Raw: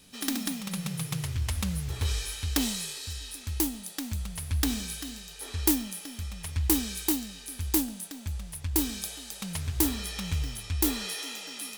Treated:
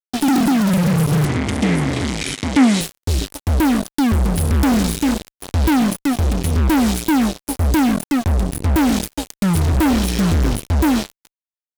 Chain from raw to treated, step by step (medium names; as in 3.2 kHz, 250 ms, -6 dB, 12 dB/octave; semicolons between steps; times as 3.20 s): fade out at the end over 1.29 s; resonant low shelf 450 Hz +13 dB, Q 3; fuzz box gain 32 dB, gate -28 dBFS; 1.25–2.81 s: cabinet simulation 140–9300 Hz, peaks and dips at 260 Hz +6 dB, 2.1 kHz +9 dB, 3.2 kHz +3 dB